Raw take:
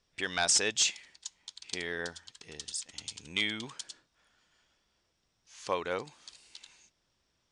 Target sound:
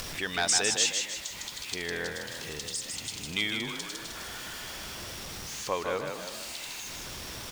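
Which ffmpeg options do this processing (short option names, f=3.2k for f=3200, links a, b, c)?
-filter_complex "[0:a]aeval=exprs='val(0)+0.5*0.00891*sgn(val(0))':c=same,asplit=6[a][b][c][d][e][f];[b]adelay=155,afreqshift=36,volume=-5dB[g];[c]adelay=310,afreqshift=72,volume=-12.3dB[h];[d]adelay=465,afreqshift=108,volume=-19.7dB[i];[e]adelay=620,afreqshift=144,volume=-27dB[j];[f]adelay=775,afreqshift=180,volume=-34.3dB[k];[a][g][h][i][j][k]amix=inputs=6:normalize=0,acompressor=mode=upward:threshold=-33dB:ratio=2.5"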